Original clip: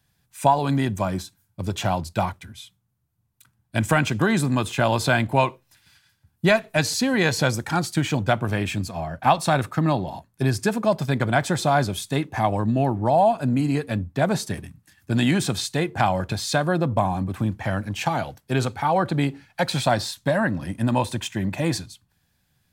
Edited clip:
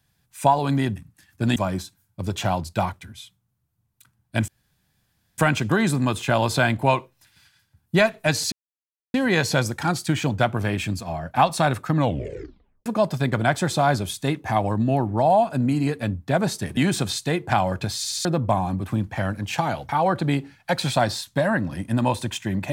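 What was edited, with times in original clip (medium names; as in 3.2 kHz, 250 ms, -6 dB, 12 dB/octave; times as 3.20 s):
3.88 s: insert room tone 0.90 s
7.02 s: insert silence 0.62 s
9.82 s: tape stop 0.92 s
14.65–15.25 s: move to 0.96 s
16.45 s: stutter in place 0.07 s, 4 plays
18.37–18.79 s: delete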